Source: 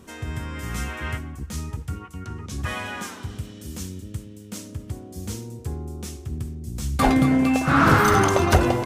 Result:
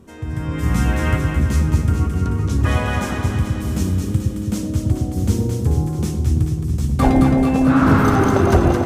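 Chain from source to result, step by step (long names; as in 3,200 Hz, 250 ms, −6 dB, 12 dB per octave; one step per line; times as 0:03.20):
tilt shelving filter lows +5 dB, about 880 Hz
automatic gain control gain up to 10.5 dB
on a send: delay that swaps between a low-pass and a high-pass 109 ms, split 810 Hz, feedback 79%, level −3 dB
on the sum: level −2 dB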